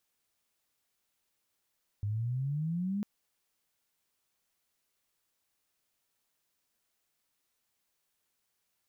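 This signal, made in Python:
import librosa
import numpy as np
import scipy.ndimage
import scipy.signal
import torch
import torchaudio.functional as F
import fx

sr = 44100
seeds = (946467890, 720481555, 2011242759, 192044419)

y = fx.chirp(sr, length_s=1.0, from_hz=100.0, to_hz=210.0, law='logarithmic', from_db=-30.0, to_db=-30.0)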